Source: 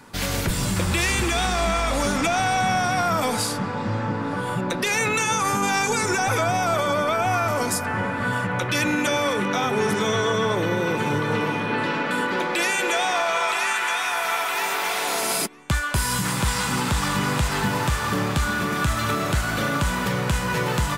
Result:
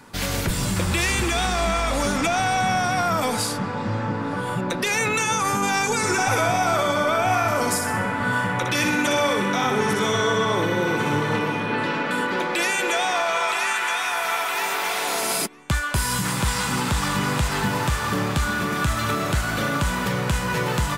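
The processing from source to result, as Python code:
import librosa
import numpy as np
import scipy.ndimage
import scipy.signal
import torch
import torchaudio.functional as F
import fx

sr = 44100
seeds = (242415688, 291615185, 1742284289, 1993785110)

y = fx.echo_thinned(x, sr, ms=62, feedback_pct=55, hz=420.0, wet_db=-5.0, at=(5.97, 11.39))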